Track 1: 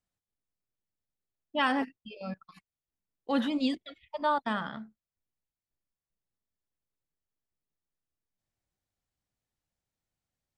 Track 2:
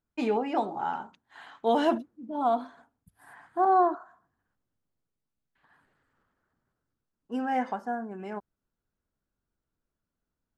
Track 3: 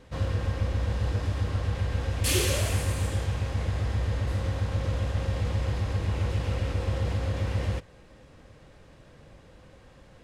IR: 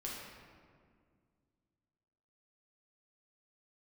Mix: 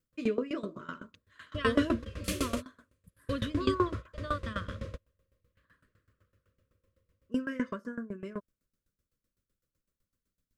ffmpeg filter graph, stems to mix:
-filter_complex "[0:a]highshelf=frequency=7200:gain=8,volume=1.5dB,asplit=2[link_01][link_02];[1:a]bass=frequency=250:gain=5,treble=frequency=4000:gain=3,volume=2.5dB[link_03];[2:a]equalizer=frequency=630:width=0.62:gain=5.5,volume=-5.5dB[link_04];[link_02]apad=whole_len=451298[link_05];[link_04][link_05]sidechaingate=range=-35dB:threshold=-53dB:ratio=16:detection=peak[link_06];[link_01][link_03][link_06]amix=inputs=3:normalize=0,asuperstop=centerf=800:order=8:qfactor=2,aeval=exprs='val(0)*pow(10,-19*if(lt(mod(7.9*n/s,1),2*abs(7.9)/1000),1-mod(7.9*n/s,1)/(2*abs(7.9)/1000),(mod(7.9*n/s,1)-2*abs(7.9)/1000)/(1-2*abs(7.9)/1000))/20)':channel_layout=same"

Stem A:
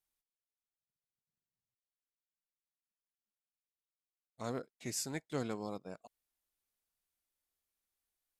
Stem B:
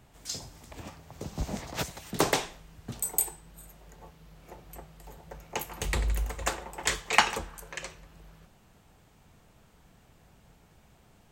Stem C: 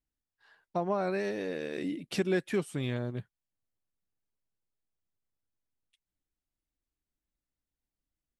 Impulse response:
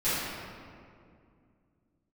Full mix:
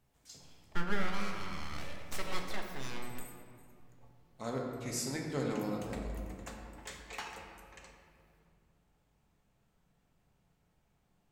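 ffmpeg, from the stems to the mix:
-filter_complex "[0:a]volume=-2dB,asplit=2[link_01][link_02];[link_02]volume=-9.5dB[link_03];[1:a]asoftclip=type=tanh:threshold=-17dB,volume=-18.5dB,asplit=2[link_04][link_05];[link_05]volume=-13dB[link_06];[2:a]lowshelf=frequency=530:width_type=q:width=1.5:gain=-9.5,aeval=exprs='abs(val(0))':channel_layout=same,volume=-2dB,asplit=3[link_07][link_08][link_09];[link_08]volume=-14dB[link_10];[link_09]apad=whole_len=498832[link_11];[link_04][link_11]sidechaincompress=threshold=-51dB:ratio=8:attack=16:release=552[link_12];[3:a]atrim=start_sample=2205[link_13];[link_03][link_06][link_10]amix=inputs=3:normalize=0[link_14];[link_14][link_13]afir=irnorm=-1:irlink=0[link_15];[link_01][link_12][link_07][link_15]amix=inputs=4:normalize=0"

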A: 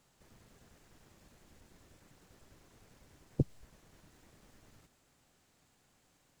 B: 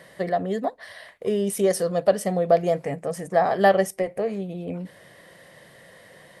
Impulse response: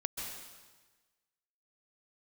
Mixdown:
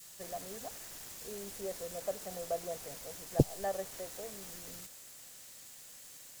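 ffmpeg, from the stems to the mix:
-filter_complex "[0:a]crystalizer=i=10:c=0,volume=2dB,asplit=2[link_01][link_02];[1:a]volume=-15dB[link_03];[link_02]apad=whole_len=282277[link_04];[link_03][link_04]sidechaincompress=threshold=-57dB:ratio=8:attack=25:release=101[link_05];[link_01][link_05]amix=inputs=2:normalize=0,adynamicequalizer=threshold=0.00158:dfrequency=630:dqfactor=0.82:tfrequency=630:tqfactor=0.82:attack=5:release=100:ratio=0.375:range=4:mode=boostabove:tftype=bell"

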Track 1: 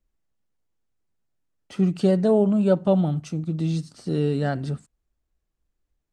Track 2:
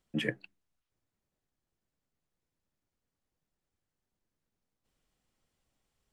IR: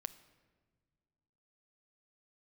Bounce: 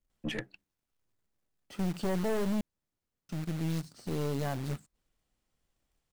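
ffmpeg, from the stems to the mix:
-filter_complex "[0:a]acrusher=bits=2:mode=log:mix=0:aa=0.000001,volume=-4.5dB,asplit=3[link_01][link_02][link_03];[link_01]atrim=end=2.61,asetpts=PTS-STARTPTS,afade=type=out:start_time=2.606:duration=0.004:curve=hsin[link_04];[link_02]atrim=start=2.61:end=3.29,asetpts=PTS-STARTPTS,volume=0[link_05];[link_03]atrim=start=3.29,asetpts=PTS-STARTPTS,afade=type=in:duration=0.004:curve=hsin[link_06];[link_04][link_05][link_06]concat=n=3:v=0:a=1[link_07];[1:a]adelay=100,volume=0.5dB[link_08];[link_07][link_08]amix=inputs=2:normalize=0,aeval=exprs='(tanh(25.1*val(0)+0.55)-tanh(0.55))/25.1':channel_layout=same"

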